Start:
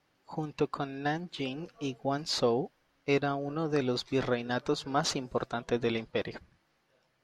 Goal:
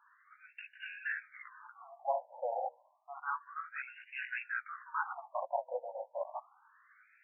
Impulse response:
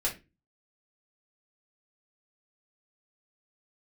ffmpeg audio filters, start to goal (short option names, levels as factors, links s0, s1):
-af "flanger=delay=15.5:depth=4:speed=2.9,areverse,acompressor=threshold=0.00708:ratio=6,areverse,bandreject=f=60:t=h:w=6,bandreject=f=120:t=h:w=6,bandreject=f=180:t=h:w=6,bandreject=f=240:t=h:w=6,bandreject=f=300:t=h:w=6,bandreject=f=360:t=h:w=6,bandreject=f=420:t=h:w=6,bandreject=f=480:t=h:w=6,afftfilt=real='re*between(b*sr/1024,670*pow(2100/670,0.5+0.5*sin(2*PI*0.3*pts/sr))/1.41,670*pow(2100/670,0.5+0.5*sin(2*PI*0.3*pts/sr))*1.41)':imag='im*between(b*sr/1024,670*pow(2100/670,0.5+0.5*sin(2*PI*0.3*pts/sr))/1.41,670*pow(2100/670,0.5+0.5*sin(2*PI*0.3*pts/sr))*1.41)':win_size=1024:overlap=0.75,volume=6.68"